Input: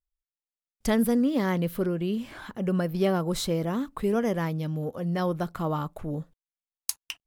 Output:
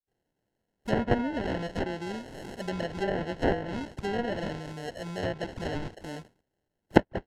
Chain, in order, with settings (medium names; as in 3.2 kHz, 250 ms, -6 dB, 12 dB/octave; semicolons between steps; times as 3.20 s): RIAA curve recording; phase dispersion highs, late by 79 ms, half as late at 2 kHz; sample-and-hold 37×; low-pass that closes with the level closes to 2 kHz, closed at -23.5 dBFS; trim -1 dB